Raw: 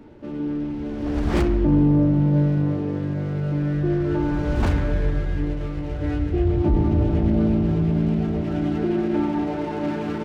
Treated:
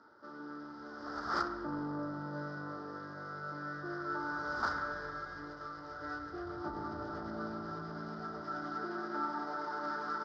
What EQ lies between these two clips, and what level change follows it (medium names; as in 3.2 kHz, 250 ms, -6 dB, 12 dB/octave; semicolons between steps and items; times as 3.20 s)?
two resonant band-passes 2.6 kHz, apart 1.9 oct; distance through air 120 m; band-stop 2.2 kHz, Q 12; +8.0 dB